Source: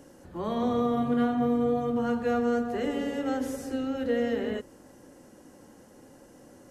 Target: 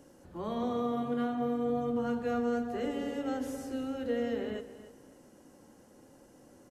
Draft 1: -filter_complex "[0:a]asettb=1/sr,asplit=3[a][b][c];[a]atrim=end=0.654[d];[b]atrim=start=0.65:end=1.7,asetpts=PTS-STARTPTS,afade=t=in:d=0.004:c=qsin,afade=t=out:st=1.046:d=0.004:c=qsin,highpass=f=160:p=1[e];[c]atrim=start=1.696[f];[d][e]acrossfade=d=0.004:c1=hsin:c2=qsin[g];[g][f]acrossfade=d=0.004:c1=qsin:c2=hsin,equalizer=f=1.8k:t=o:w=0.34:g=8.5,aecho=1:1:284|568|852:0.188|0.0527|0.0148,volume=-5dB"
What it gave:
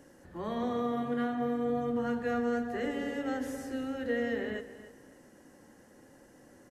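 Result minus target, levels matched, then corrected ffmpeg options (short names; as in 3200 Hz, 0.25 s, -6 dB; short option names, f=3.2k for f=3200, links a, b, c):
2000 Hz band +6.0 dB
-filter_complex "[0:a]asettb=1/sr,asplit=3[a][b][c];[a]atrim=end=0.654[d];[b]atrim=start=0.65:end=1.7,asetpts=PTS-STARTPTS,afade=t=in:d=0.004:c=qsin,afade=t=out:st=1.046:d=0.004:c=qsin,highpass=f=160:p=1[e];[c]atrim=start=1.696[f];[d][e]acrossfade=d=0.004:c1=hsin:c2=qsin[g];[g][f]acrossfade=d=0.004:c1=qsin:c2=hsin,equalizer=f=1.8k:t=o:w=0.34:g=-2.5,aecho=1:1:284|568|852:0.188|0.0527|0.0148,volume=-5dB"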